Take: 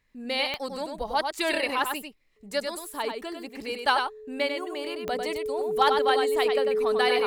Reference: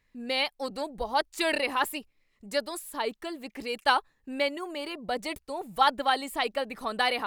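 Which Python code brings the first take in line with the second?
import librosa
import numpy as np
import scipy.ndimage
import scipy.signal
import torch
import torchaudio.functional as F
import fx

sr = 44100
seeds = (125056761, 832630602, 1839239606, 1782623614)

y = fx.fix_declip(x, sr, threshold_db=-10.5)
y = fx.fix_declick_ar(y, sr, threshold=10.0)
y = fx.notch(y, sr, hz=430.0, q=30.0)
y = fx.fix_echo_inverse(y, sr, delay_ms=97, level_db=-5.5)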